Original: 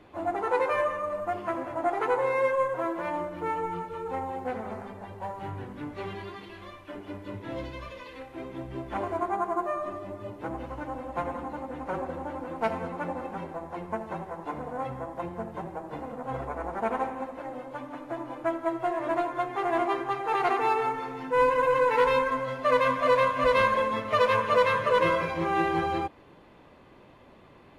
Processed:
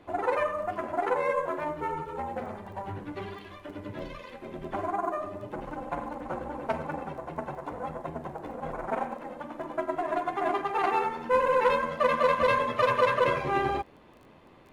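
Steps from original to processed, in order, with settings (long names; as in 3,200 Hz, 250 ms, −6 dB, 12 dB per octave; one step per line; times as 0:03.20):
time stretch by overlap-add 0.53×, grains 23 ms
surface crackle 13 per second −45 dBFS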